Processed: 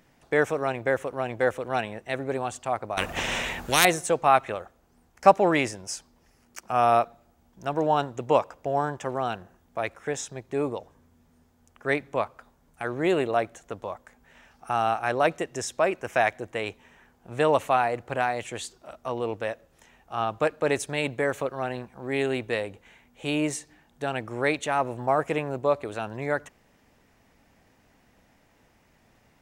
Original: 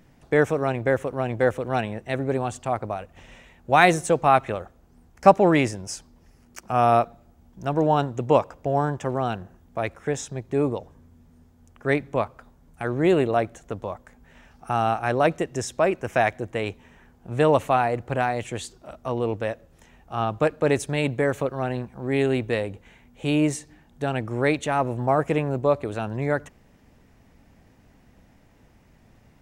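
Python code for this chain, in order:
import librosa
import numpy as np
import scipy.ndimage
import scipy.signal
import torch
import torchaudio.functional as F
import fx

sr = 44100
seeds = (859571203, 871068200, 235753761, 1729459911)

y = fx.low_shelf(x, sr, hz=320.0, db=-10.5)
y = fx.spectral_comp(y, sr, ratio=4.0, at=(2.97, 3.85))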